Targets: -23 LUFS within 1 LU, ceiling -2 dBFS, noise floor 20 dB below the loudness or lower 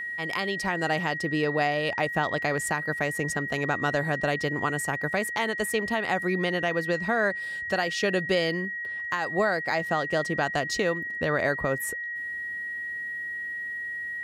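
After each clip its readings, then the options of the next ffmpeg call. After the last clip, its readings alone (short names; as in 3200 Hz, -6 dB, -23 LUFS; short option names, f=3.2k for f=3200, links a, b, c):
steady tone 1900 Hz; tone level -31 dBFS; loudness -27.5 LUFS; peak -13.5 dBFS; loudness target -23.0 LUFS
-> -af "bandreject=f=1.9k:w=30"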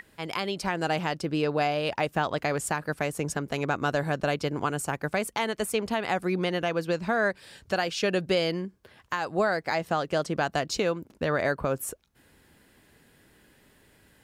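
steady tone none; loudness -28.5 LUFS; peak -14.0 dBFS; loudness target -23.0 LUFS
-> -af "volume=5.5dB"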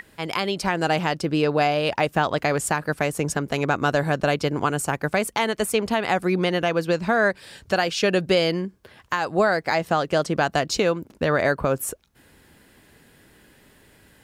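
loudness -23.0 LUFS; peak -8.5 dBFS; noise floor -56 dBFS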